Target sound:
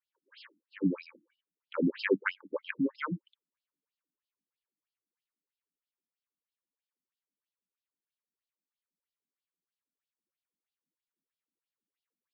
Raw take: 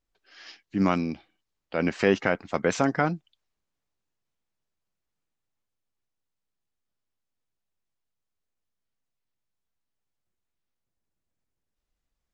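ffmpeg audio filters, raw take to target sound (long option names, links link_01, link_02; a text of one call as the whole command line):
ffmpeg -i in.wav -af "asuperstop=centerf=710:order=8:qfactor=2.2,afftfilt=real='re*between(b*sr/1024,220*pow(3900/220,0.5+0.5*sin(2*PI*3.1*pts/sr))/1.41,220*pow(3900/220,0.5+0.5*sin(2*PI*3.1*pts/sr))*1.41)':imag='im*between(b*sr/1024,220*pow(3900/220,0.5+0.5*sin(2*PI*3.1*pts/sr))/1.41,220*pow(3900/220,0.5+0.5*sin(2*PI*3.1*pts/sr))*1.41)':win_size=1024:overlap=0.75" out.wav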